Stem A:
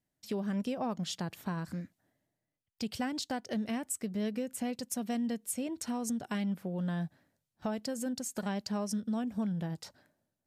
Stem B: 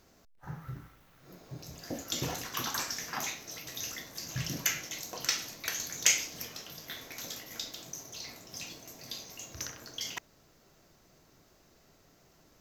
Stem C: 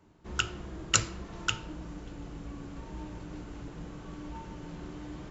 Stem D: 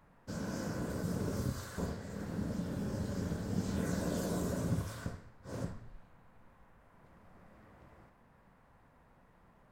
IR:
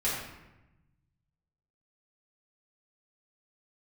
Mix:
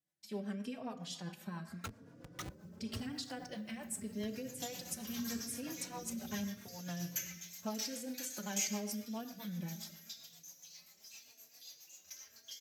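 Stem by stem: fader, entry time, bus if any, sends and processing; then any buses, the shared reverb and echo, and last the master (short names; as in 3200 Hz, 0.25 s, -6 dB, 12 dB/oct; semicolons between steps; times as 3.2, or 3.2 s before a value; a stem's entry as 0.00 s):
-4.0 dB, 0.00 s, send -13.5 dB, tilt shelf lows -3.5 dB, about 800 Hz
-16.5 dB, 2.50 s, send -5 dB, tilt +4 dB/oct; endless flanger 7.7 ms -2.2 Hz
-0.5 dB, 1.45 s, no send, moving spectral ripple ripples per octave 1.3, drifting +1.5 Hz, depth 21 dB; Schmitt trigger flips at -25.5 dBFS
-13.0 dB, 1.60 s, no send, slew limiter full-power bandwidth 6.8 Hz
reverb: on, RT60 1.0 s, pre-delay 4 ms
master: HPF 87 Hz; rotary speaker horn 7.5 Hz; endless flanger 3.6 ms +0.85 Hz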